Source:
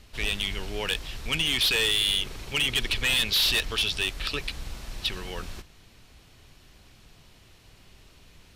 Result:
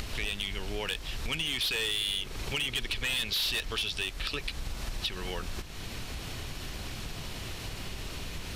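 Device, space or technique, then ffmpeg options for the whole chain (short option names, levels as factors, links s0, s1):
upward and downward compression: -af "acompressor=mode=upward:threshold=0.0316:ratio=2.5,acompressor=threshold=0.0158:ratio=4,volume=1.68"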